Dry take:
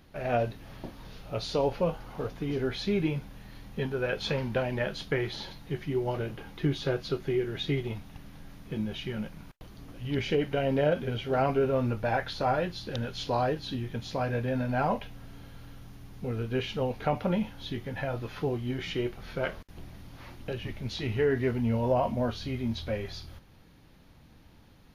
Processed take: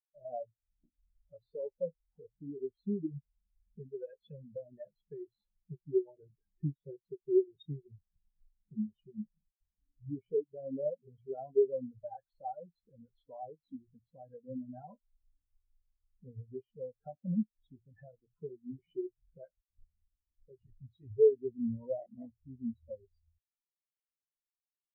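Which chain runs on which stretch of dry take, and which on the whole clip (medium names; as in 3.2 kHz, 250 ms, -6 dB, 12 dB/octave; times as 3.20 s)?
22.00–22.47 s: steep low-pass 3.3 kHz + treble shelf 2.6 kHz -10.5 dB + sample-rate reducer 1.3 kHz
whole clip: compression 2.5:1, threshold -38 dBFS; hum notches 60/120 Hz; spectral contrast expander 4:1; trim +6.5 dB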